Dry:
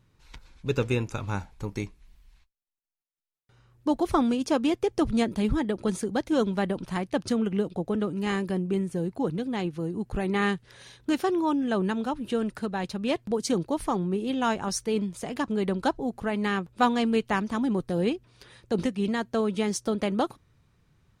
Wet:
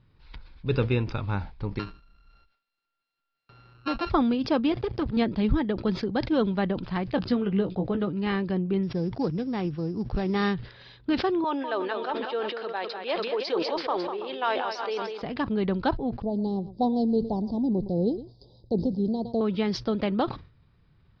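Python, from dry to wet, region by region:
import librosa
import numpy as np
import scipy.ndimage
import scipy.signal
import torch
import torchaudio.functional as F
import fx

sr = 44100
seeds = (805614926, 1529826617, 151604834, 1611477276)

y = fx.chain(x, sr, fx.sample_sort(block=32),
    fx.low_shelf(hz=170.0, db=-8.5),
    fx.band_squash(depth_pct=40), at=(1.79, 4.1))
y = fx.chain(y, sr, fx.halfwave_gain(db=-12.0),
    fx.highpass(hz=54.0, slope=12), at=(4.72, 5.17))
y = fx.chain(y, sr, fx.lowpass(hz=7900.0, slope=12),
    fx.doubler(ms=16.0, db=-7), at=(7.16, 8.09))
y = fx.chain(y, sr, fx.sample_sort(block=8),
    fx.lowpass(hz=3900.0, slope=6), at=(8.83, 10.54))
y = fx.chain(y, sr, fx.highpass(hz=430.0, slope=24),
    fx.echo_multitap(ms=(198, 332, 548), db=(-8.0, -16.5, -18.5)),
    fx.sustainer(db_per_s=35.0), at=(11.44, 15.22))
y = fx.chain(y, sr, fx.cheby2_bandstop(low_hz=1300.0, high_hz=2700.0, order=4, stop_db=50),
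    fx.echo_single(ms=113, db=-21.0), at=(16.22, 19.41))
y = scipy.signal.sosfilt(scipy.signal.cheby1(6, 1.0, 5000.0, 'lowpass', fs=sr, output='sos'), y)
y = fx.low_shelf(y, sr, hz=160.0, db=5.5)
y = fx.sustainer(y, sr, db_per_s=130.0)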